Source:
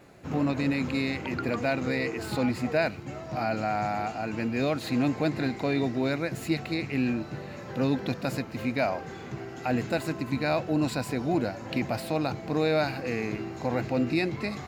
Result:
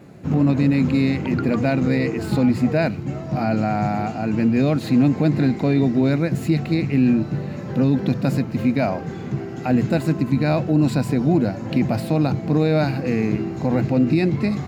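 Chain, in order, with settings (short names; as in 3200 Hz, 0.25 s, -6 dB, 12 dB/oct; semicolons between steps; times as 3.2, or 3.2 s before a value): bell 160 Hz +13 dB 2.4 oct; notches 60/120 Hz; maximiser +10 dB; gain -8 dB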